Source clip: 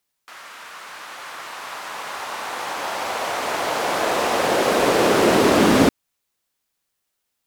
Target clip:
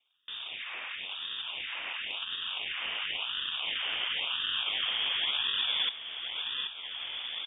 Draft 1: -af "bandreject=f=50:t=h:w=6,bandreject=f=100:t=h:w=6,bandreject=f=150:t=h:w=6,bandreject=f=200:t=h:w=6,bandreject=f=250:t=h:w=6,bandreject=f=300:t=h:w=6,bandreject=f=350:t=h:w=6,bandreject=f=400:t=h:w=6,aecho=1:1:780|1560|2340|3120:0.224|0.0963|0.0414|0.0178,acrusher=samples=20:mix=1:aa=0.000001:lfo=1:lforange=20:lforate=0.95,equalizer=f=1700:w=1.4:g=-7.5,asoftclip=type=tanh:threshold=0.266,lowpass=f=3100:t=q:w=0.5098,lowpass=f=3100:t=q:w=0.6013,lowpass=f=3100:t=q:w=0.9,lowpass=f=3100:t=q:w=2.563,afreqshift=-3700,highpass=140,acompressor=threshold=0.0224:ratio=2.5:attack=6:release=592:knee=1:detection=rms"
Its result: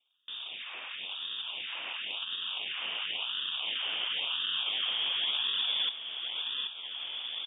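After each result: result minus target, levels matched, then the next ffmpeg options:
saturation: distortion +13 dB; 125 Hz band -4.0 dB; 2 kHz band -2.5 dB
-af "bandreject=f=50:t=h:w=6,bandreject=f=100:t=h:w=6,bandreject=f=150:t=h:w=6,bandreject=f=200:t=h:w=6,bandreject=f=250:t=h:w=6,bandreject=f=300:t=h:w=6,bandreject=f=350:t=h:w=6,bandreject=f=400:t=h:w=6,aecho=1:1:780|1560|2340|3120:0.224|0.0963|0.0414|0.0178,acrusher=samples=20:mix=1:aa=0.000001:lfo=1:lforange=20:lforate=0.95,equalizer=f=1700:w=1.4:g=-7.5,asoftclip=type=tanh:threshold=0.708,lowpass=f=3100:t=q:w=0.5098,lowpass=f=3100:t=q:w=0.6013,lowpass=f=3100:t=q:w=0.9,lowpass=f=3100:t=q:w=2.563,afreqshift=-3700,acompressor=threshold=0.0224:ratio=2.5:attack=6:release=592:knee=1:detection=rms"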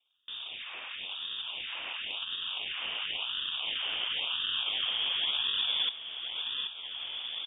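2 kHz band -2.5 dB
-af "bandreject=f=50:t=h:w=6,bandreject=f=100:t=h:w=6,bandreject=f=150:t=h:w=6,bandreject=f=200:t=h:w=6,bandreject=f=250:t=h:w=6,bandreject=f=300:t=h:w=6,bandreject=f=350:t=h:w=6,bandreject=f=400:t=h:w=6,aecho=1:1:780|1560|2340|3120:0.224|0.0963|0.0414|0.0178,acrusher=samples=20:mix=1:aa=0.000001:lfo=1:lforange=20:lforate=0.95,asoftclip=type=tanh:threshold=0.708,lowpass=f=3100:t=q:w=0.5098,lowpass=f=3100:t=q:w=0.6013,lowpass=f=3100:t=q:w=0.9,lowpass=f=3100:t=q:w=2.563,afreqshift=-3700,acompressor=threshold=0.0224:ratio=2.5:attack=6:release=592:knee=1:detection=rms"

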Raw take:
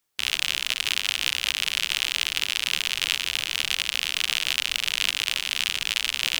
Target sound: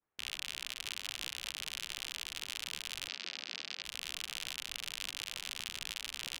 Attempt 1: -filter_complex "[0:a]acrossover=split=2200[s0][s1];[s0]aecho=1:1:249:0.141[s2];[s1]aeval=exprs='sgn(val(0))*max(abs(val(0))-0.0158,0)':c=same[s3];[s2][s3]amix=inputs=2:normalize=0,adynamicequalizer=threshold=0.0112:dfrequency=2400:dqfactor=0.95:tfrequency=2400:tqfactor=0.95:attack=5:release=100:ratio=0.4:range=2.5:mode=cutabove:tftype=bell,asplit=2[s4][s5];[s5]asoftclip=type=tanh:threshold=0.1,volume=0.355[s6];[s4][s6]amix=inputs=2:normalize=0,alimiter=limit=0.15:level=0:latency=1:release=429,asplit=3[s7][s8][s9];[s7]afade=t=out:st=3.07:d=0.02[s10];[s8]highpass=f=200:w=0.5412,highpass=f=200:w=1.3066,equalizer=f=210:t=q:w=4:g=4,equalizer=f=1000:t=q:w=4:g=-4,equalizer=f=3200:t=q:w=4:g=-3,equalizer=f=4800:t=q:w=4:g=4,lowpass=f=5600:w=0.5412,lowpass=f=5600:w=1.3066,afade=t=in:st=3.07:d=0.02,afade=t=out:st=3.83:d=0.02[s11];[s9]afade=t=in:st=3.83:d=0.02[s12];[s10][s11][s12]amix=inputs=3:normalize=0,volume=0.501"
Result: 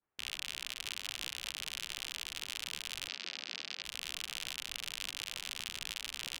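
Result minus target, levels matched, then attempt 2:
saturation: distortion +13 dB
-filter_complex "[0:a]acrossover=split=2200[s0][s1];[s0]aecho=1:1:249:0.141[s2];[s1]aeval=exprs='sgn(val(0))*max(abs(val(0))-0.0158,0)':c=same[s3];[s2][s3]amix=inputs=2:normalize=0,adynamicequalizer=threshold=0.0112:dfrequency=2400:dqfactor=0.95:tfrequency=2400:tqfactor=0.95:attack=5:release=100:ratio=0.4:range=2.5:mode=cutabove:tftype=bell,asplit=2[s4][s5];[s5]asoftclip=type=tanh:threshold=0.355,volume=0.355[s6];[s4][s6]amix=inputs=2:normalize=0,alimiter=limit=0.15:level=0:latency=1:release=429,asplit=3[s7][s8][s9];[s7]afade=t=out:st=3.07:d=0.02[s10];[s8]highpass=f=200:w=0.5412,highpass=f=200:w=1.3066,equalizer=f=210:t=q:w=4:g=4,equalizer=f=1000:t=q:w=4:g=-4,equalizer=f=3200:t=q:w=4:g=-3,equalizer=f=4800:t=q:w=4:g=4,lowpass=f=5600:w=0.5412,lowpass=f=5600:w=1.3066,afade=t=in:st=3.07:d=0.02,afade=t=out:st=3.83:d=0.02[s11];[s9]afade=t=in:st=3.83:d=0.02[s12];[s10][s11][s12]amix=inputs=3:normalize=0,volume=0.501"

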